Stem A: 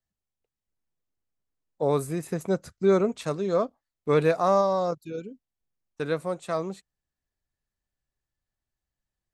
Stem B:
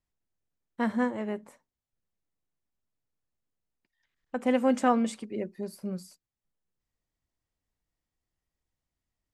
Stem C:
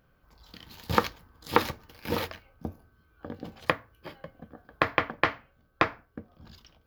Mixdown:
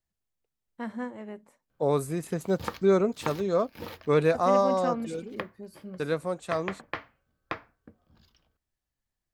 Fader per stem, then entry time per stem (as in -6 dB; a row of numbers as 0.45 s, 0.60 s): -1.0 dB, -7.5 dB, -10.5 dB; 0.00 s, 0.00 s, 1.70 s